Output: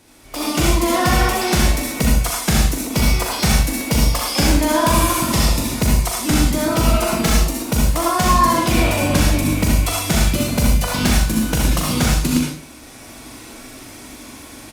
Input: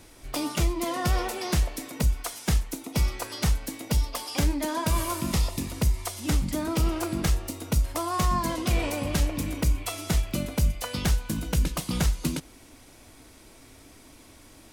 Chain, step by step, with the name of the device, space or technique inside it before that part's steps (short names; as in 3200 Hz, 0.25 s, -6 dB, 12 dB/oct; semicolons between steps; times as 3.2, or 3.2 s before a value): 6.81–7.41 comb 4.6 ms, depth 68%; early reflections 41 ms -6 dB, 80 ms -10.5 dB; far-field microphone of a smart speaker (reverb RT60 0.35 s, pre-delay 59 ms, DRR -1 dB; HPF 95 Hz 6 dB/oct; AGC gain up to 11.5 dB; gain -1 dB; Opus 48 kbps 48000 Hz)